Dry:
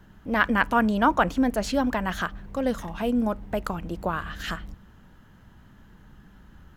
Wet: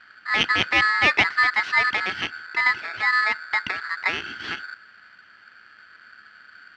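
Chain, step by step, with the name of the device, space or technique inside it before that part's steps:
ring modulator pedal into a guitar cabinet (ring modulator with a square carrier 1,500 Hz; loudspeaker in its box 98–4,400 Hz, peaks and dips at 150 Hz −10 dB, 260 Hz −3 dB, 530 Hz −8 dB, 2,000 Hz +10 dB)

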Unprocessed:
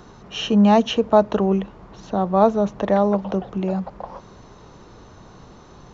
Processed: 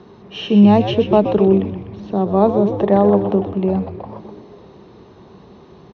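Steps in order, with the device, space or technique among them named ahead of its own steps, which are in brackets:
frequency-shifting delay pedal into a guitar cabinet (echo with shifted repeats 125 ms, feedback 63%, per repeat −100 Hz, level −8 dB; loudspeaker in its box 75–4,500 Hz, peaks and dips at 200 Hz +6 dB, 390 Hz +9 dB, 1,400 Hz −6 dB)
0:02.72–0:03.85: parametric band 890 Hz +4.5 dB 1.4 octaves
level −1 dB

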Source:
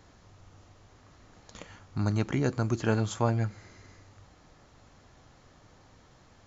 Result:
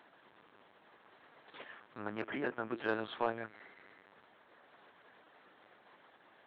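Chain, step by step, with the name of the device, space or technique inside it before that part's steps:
0:01.99–0:02.77: elliptic low-pass filter 3,400 Hz
talking toy (linear-prediction vocoder at 8 kHz pitch kept; high-pass filter 390 Hz 12 dB per octave; parametric band 1,700 Hz +4.5 dB 0.37 octaves; soft clipping −17.5 dBFS, distortion −18 dB)
level −2 dB

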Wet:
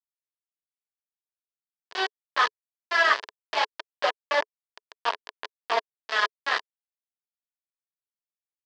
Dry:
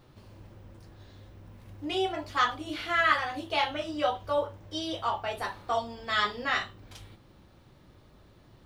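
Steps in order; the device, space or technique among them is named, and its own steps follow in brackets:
hand-held game console (bit reduction 4 bits; loudspeaker in its box 430–5,000 Hz, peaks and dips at 430 Hz +9 dB, 650 Hz +6 dB, 1,000 Hz +10 dB, 1,700 Hz +9 dB, 3,100 Hz +4 dB, 4,700 Hz +5 dB)
level −3.5 dB

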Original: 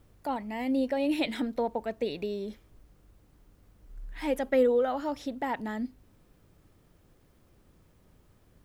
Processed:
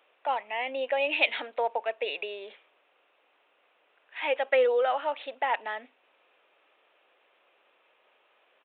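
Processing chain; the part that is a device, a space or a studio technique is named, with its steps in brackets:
musical greeting card (downsampling to 8,000 Hz; high-pass filter 540 Hz 24 dB per octave; parametric band 2,600 Hz +9 dB 0.41 octaves)
level +5 dB

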